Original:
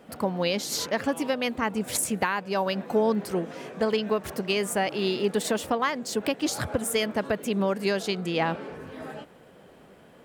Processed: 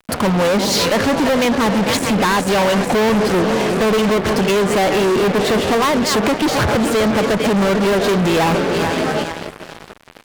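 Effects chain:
feedback delay that plays each chunk backwards 222 ms, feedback 69%, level −13 dB
0:01.99–0:04.08: gain into a clipping stage and back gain 22.5 dB
treble cut that deepens with the level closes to 1,700 Hz, closed at −21.5 dBFS
fuzz pedal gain 37 dB, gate −45 dBFS

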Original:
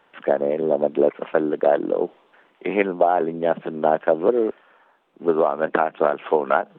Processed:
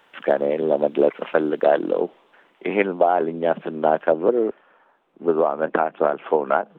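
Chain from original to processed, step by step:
high-shelf EQ 2,500 Hz +10 dB, from 0:02.01 +2.5 dB, from 0:04.12 −6.5 dB

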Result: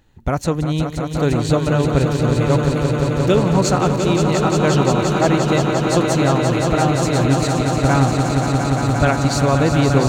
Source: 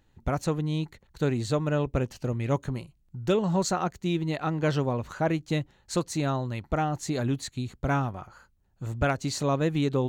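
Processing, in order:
echo that builds up and dies away 175 ms, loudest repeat 5, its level −7 dB
level +8 dB

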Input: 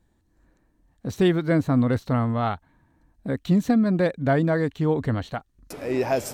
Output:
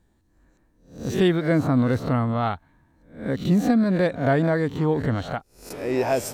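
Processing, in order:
peak hold with a rise ahead of every peak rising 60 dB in 0.42 s

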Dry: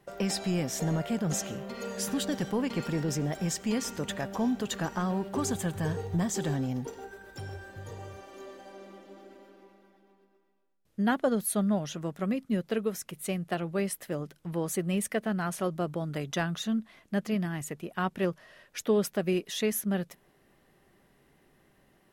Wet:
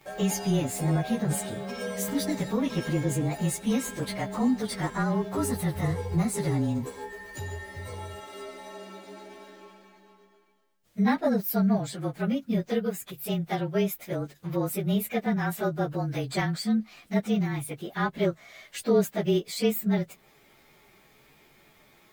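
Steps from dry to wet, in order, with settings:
partials spread apart or drawn together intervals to 108%
one half of a high-frequency compander encoder only
level +5 dB

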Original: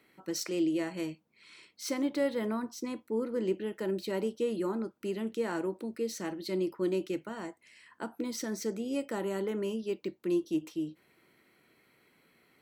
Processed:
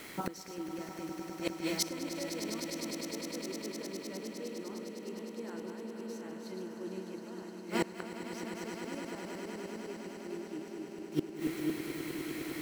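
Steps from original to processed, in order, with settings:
feedback delay that plays each chunk backwards 225 ms, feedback 47%, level −5 dB
bit reduction 11 bits
gate with flip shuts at −36 dBFS, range −31 dB
on a send: echo that builds up and dies away 102 ms, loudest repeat 8, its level −12 dB
on the sum: level +17.5 dB

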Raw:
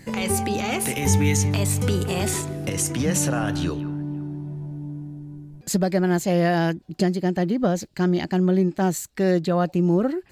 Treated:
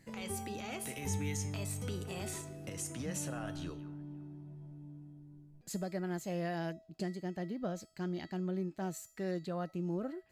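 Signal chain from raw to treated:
tuned comb filter 650 Hz, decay 0.49 s, mix 80%
level −3.5 dB

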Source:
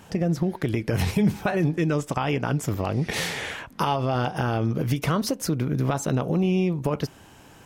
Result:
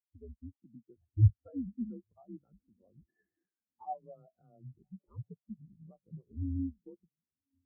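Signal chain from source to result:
feedback delay with all-pass diffusion 1,062 ms, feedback 57%, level −11 dB
single-sideband voice off tune −100 Hz 200–2,200 Hz
every bin expanded away from the loudest bin 4 to 1
level −2 dB

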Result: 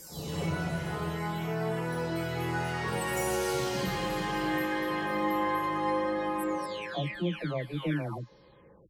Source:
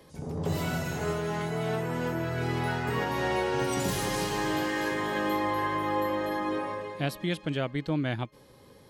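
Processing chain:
every frequency bin delayed by itself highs early, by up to 714 ms

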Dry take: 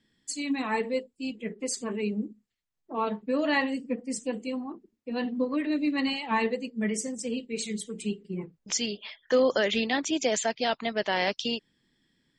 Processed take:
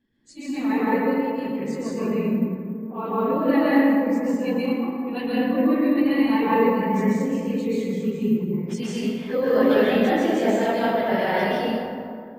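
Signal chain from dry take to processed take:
random phases in long frames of 50 ms
0:04.36–0:05.39: parametric band 3,100 Hz +11 dB 2.2 octaves
dense smooth reverb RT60 2.3 s, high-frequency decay 0.4×, pre-delay 115 ms, DRR −8 dB
bad sample-rate conversion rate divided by 3×, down none, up zero stuff
head-to-tape spacing loss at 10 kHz 28 dB

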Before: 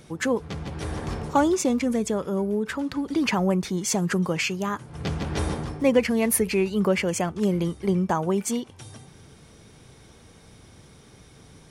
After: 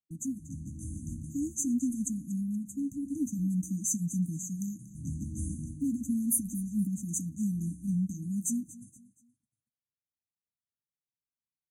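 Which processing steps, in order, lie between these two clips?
noise gate −40 dBFS, range −52 dB
low-shelf EQ 270 Hz −8 dB
in parallel at +1.5 dB: brickwall limiter −20 dBFS, peak gain reduction 10 dB
on the sum: linear-phase brick-wall band-stop 310–6,000 Hz
flanger 0.44 Hz, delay 4.2 ms, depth 7.7 ms, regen −51%
on a send: repeating echo 236 ms, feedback 37%, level −18 dB
on the sum: level −3 dB

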